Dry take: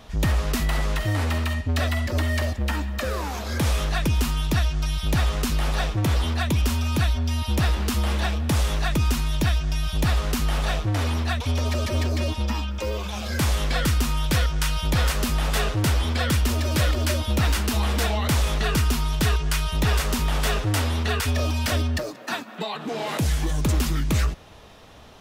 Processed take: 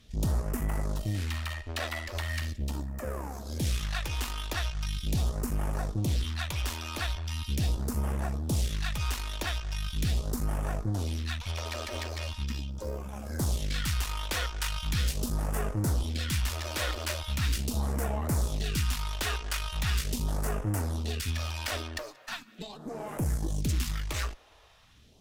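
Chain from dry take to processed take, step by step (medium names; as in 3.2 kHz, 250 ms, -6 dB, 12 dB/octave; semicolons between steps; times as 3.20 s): Chebyshev shaper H 3 -20 dB, 4 -17 dB, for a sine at -14.5 dBFS; phase shifter stages 2, 0.4 Hz, lowest notch 140–3700 Hz; trim -6.5 dB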